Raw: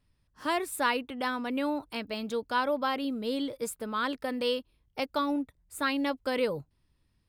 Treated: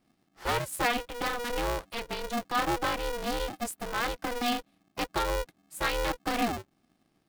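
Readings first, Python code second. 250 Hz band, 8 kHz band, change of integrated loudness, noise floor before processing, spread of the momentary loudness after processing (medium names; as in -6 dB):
-4.0 dB, +4.5 dB, 0.0 dB, -73 dBFS, 7 LU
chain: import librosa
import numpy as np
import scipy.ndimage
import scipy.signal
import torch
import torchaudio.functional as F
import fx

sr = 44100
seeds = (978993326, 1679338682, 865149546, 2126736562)

y = x * np.sign(np.sin(2.0 * np.pi * 240.0 * np.arange(len(x)) / sr))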